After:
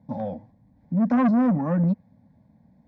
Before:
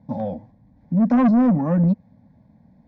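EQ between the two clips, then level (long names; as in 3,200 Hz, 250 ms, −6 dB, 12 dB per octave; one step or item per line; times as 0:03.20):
high-pass filter 44 Hz
dynamic equaliser 1,500 Hz, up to +4 dB, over −40 dBFS, Q 0.96
−4.0 dB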